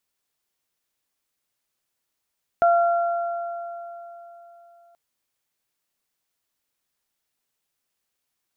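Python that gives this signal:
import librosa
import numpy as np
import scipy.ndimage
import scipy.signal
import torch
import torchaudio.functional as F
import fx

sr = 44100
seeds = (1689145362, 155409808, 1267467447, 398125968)

y = fx.additive(sr, length_s=2.33, hz=687.0, level_db=-13.5, upper_db=(-8.5,), decay_s=3.55, upper_decays_s=(3.08,))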